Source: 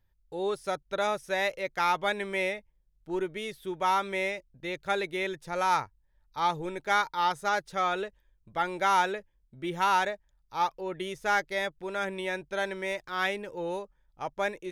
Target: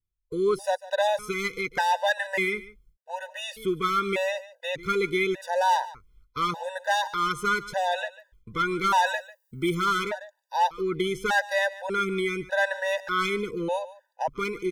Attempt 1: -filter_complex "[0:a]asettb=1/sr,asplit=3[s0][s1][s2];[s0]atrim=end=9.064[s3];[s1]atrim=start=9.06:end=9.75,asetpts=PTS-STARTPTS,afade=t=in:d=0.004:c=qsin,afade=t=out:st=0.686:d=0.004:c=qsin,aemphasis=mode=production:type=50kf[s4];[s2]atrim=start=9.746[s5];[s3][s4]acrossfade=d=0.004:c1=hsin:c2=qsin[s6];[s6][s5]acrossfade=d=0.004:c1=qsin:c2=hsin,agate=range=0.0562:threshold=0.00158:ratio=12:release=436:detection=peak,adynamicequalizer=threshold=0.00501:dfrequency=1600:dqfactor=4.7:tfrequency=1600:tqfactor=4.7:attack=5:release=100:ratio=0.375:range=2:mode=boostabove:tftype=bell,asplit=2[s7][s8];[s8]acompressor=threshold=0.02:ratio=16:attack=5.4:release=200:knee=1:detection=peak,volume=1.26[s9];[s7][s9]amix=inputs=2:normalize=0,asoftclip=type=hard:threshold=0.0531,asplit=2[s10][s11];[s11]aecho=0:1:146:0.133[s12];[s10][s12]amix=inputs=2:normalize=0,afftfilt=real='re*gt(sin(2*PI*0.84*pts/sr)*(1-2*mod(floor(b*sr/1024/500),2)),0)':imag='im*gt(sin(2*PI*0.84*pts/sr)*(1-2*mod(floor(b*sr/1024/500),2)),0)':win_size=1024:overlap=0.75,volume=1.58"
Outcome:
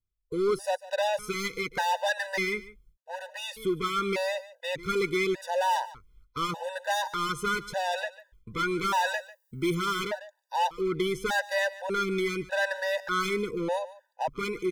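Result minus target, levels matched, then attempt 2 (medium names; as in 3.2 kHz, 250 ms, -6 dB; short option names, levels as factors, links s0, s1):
hard clipper: distortion +8 dB
-filter_complex "[0:a]asettb=1/sr,asplit=3[s0][s1][s2];[s0]atrim=end=9.064[s3];[s1]atrim=start=9.06:end=9.75,asetpts=PTS-STARTPTS,afade=t=in:d=0.004:c=qsin,afade=t=out:st=0.686:d=0.004:c=qsin,aemphasis=mode=production:type=50kf[s4];[s2]atrim=start=9.746[s5];[s3][s4]acrossfade=d=0.004:c1=hsin:c2=qsin[s6];[s6][s5]acrossfade=d=0.004:c1=qsin:c2=hsin,agate=range=0.0562:threshold=0.00158:ratio=12:release=436:detection=peak,adynamicequalizer=threshold=0.00501:dfrequency=1600:dqfactor=4.7:tfrequency=1600:tqfactor=4.7:attack=5:release=100:ratio=0.375:range=2:mode=boostabove:tftype=bell,asplit=2[s7][s8];[s8]acompressor=threshold=0.02:ratio=16:attack=5.4:release=200:knee=1:detection=peak,volume=1.26[s9];[s7][s9]amix=inputs=2:normalize=0,asoftclip=type=hard:threshold=0.112,asplit=2[s10][s11];[s11]aecho=0:1:146:0.133[s12];[s10][s12]amix=inputs=2:normalize=0,afftfilt=real='re*gt(sin(2*PI*0.84*pts/sr)*(1-2*mod(floor(b*sr/1024/500),2)),0)':imag='im*gt(sin(2*PI*0.84*pts/sr)*(1-2*mod(floor(b*sr/1024/500),2)),0)':win_size=1024:overlap=0.75,volume=1.58"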